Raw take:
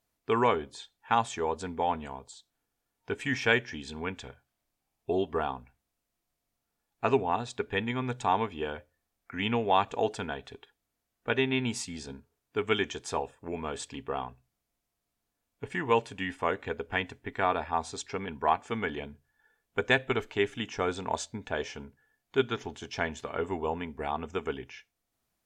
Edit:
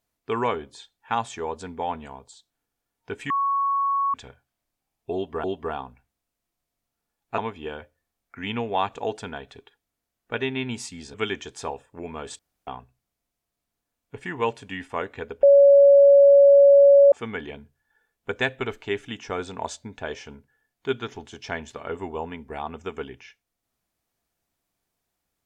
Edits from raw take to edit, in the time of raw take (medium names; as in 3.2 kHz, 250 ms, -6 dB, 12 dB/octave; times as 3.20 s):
3.30–4.14 s: bleep 1.11 kHz -20 dBFS
5.14–5.44 s: loop, 2 plays
7.08–8.34 s: delete
12.10–12.63 s: delete
13.88–14.16 s: room tone
16.92–18.61 s: bleep 562 Hz -9.5 dBFS